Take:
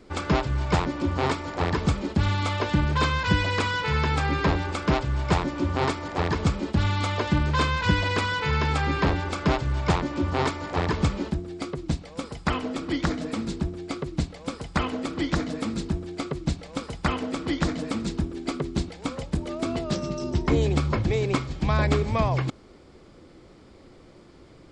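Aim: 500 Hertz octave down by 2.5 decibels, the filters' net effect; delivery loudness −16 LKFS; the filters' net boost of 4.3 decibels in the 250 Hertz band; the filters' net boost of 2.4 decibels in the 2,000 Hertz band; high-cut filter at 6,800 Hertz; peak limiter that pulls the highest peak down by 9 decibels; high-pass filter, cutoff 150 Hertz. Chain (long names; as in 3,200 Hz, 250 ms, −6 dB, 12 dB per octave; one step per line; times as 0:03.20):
high-pass filter 150 Hz
low-pass filter 6,800 Hz
parametric band 250 Hz +8.5 dB
parametric band 500 Hz −7 dB
parametric band 2,000 Hz +3.5 dB
level +11 dB
brickwall limiter −4 dBFS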